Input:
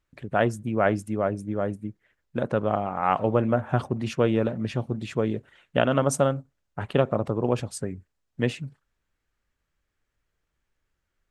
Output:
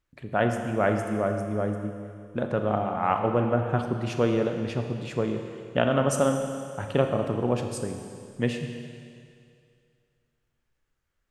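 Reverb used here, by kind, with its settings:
four-comb reverb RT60 2.3 s, combs from 26 ms, DRR 4.5 dB
level −2 dB

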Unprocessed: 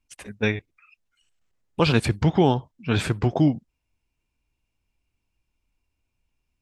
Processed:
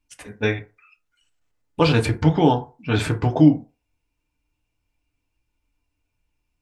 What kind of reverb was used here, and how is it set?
feedback delay network reverb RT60 0.32 s, low-frequency decay 0.75×, high-frequency decay 0.45×, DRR 2.5 dB

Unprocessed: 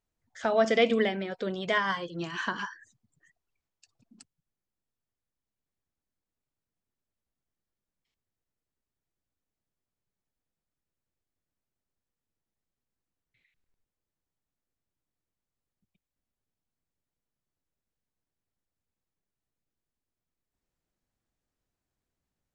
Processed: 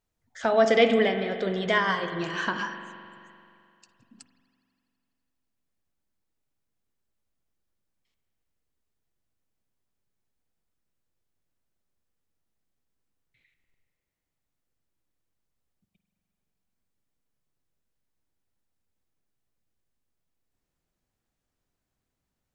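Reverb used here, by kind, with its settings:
spring reverb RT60 2.5 s, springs 43 ms, chirp 40 ms, DRR 7.5 dB
level +3 dB

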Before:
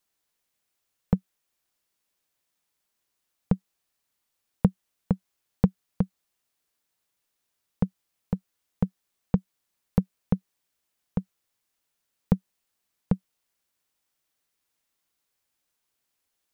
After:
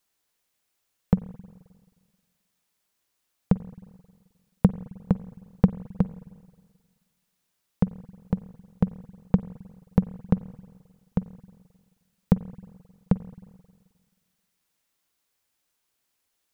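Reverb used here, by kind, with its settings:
spring reverb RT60 1.6 s, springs 44/53 ms, chirp 35 ms, DRR 15.5 dB
level +2.5 dB

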